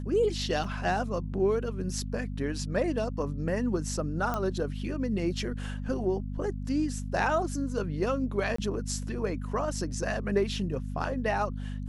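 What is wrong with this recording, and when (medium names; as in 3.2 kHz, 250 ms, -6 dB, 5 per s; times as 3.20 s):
hum 50 Hz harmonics 5 -35 dBFS
0.64 s: dropout 3.8 ms
4.34 s: pop -17 dBFS
8.56–8.58 s: dropout 24 ms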